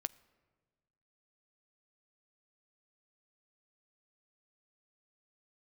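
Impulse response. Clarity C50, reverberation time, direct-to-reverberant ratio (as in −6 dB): 22.0 dB, 1.4 s, 16.5 dB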